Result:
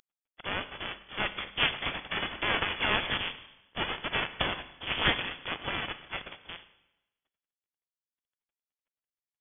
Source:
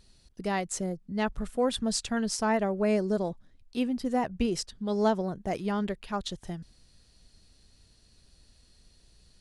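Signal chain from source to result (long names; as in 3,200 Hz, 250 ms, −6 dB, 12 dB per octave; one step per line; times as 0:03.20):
compressing power law on the bin magnitudes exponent 0.12
dead-zone distortion −49 dBFS
phase shifter 0.61 Hz, delay 3 ms, feedback 42%
four-comb reverb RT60 1.3 s, combs from 29 ms, DRR 7.5 dB
power curve on the samples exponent 1.4
voice inversion scrambler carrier 3,400 Hz
level +7.5 dB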